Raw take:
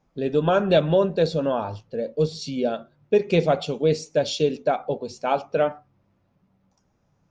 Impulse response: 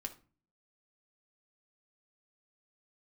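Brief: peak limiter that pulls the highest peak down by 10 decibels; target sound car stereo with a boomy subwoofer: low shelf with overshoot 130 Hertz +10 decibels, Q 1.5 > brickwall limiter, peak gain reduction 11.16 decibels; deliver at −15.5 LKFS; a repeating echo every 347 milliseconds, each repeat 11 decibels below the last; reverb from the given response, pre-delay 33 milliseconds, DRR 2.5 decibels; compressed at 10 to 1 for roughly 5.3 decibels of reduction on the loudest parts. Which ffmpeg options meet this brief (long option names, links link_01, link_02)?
-filter_complex "[0:a]acompressor=threshold=-19dB:ratio=10,alimiter=limit=-21dB:level=0:latency=1,aecho=1:1:347|694|1041:0.282|0.0789|0.0221,asplit=2[link_01][link_02];[1:a]atrim=start_sample=2205,adelay=33[link_03];[link_02][link_03]afir=irnorm=-1:irlink=0,volume=-0.5dB[link_04];[link_01][link_04]amix=inputs=2:normalize=0,lowshelf=frequency=130:width_type=q:width=1.5:gain=10,volume=20.5dB,alimiter=limit=-7dB:level=0:latency=1"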